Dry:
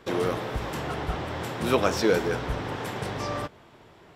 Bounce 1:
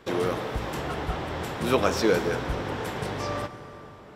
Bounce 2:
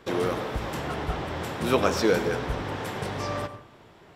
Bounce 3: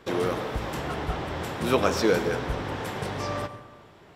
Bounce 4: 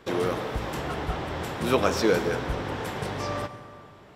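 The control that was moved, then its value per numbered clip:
plate-style reverb, RT60: 5.2, 0.53, 1.2, 2.5 s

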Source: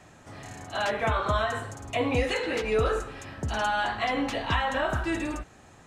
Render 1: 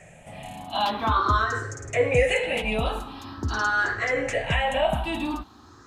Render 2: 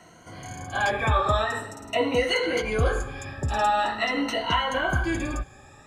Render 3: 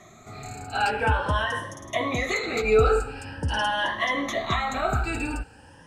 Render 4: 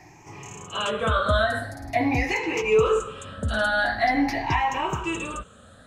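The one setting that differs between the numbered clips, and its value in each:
moving spectral ripple, ripples per octave: 0.51, 1.9, 1.2, 0.74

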